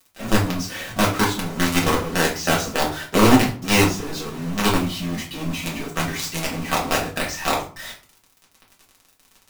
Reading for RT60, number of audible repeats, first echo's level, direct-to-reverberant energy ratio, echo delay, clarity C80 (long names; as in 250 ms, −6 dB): 0.45 s, no echo audible, no echo audible, −4.5 dB, no echo audible, 13.5 dB